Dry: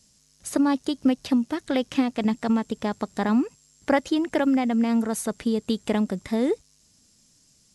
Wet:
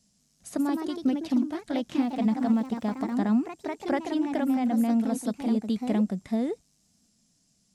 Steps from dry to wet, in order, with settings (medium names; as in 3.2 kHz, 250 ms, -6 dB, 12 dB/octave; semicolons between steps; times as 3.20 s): 1.97–3.15 s: crackle 62 per s -34 dBFS; small resonant body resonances 200/690 Hz, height 9 dB, ringing for 35 ms; ever faster or slower copies 187 ms, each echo +2 st, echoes 2, each echo -6 dB; trim -9 dB